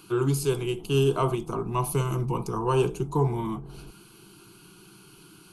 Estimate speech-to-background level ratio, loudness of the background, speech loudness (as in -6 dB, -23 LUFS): 20.0 dB, -46.5 LUFS, -26.5 LUFS